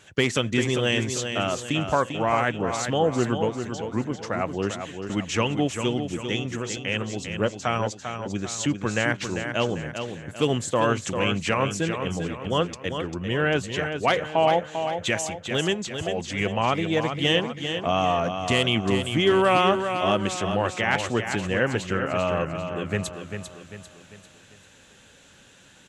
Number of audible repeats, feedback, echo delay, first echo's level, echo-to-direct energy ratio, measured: 4, 44%, 396 ms, -7.5 dB, -6.5 dB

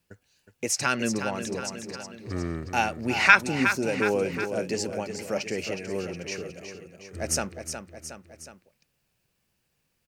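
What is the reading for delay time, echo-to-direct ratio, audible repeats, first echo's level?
365 ms, -7.0 dB, 3, -8.5 dB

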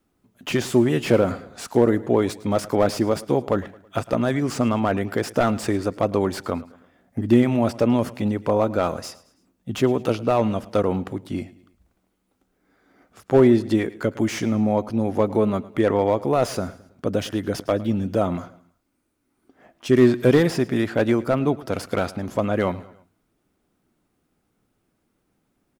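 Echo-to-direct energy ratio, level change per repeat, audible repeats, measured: -18.5 dB, -7.0 dB, 3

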